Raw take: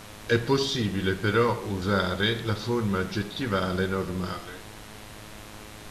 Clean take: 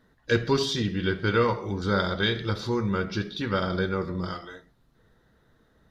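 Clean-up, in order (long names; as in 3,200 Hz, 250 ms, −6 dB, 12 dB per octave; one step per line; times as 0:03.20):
hum removal 105.7 Hz, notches 40
broadband denoise 20 dB, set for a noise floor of −44 dBFS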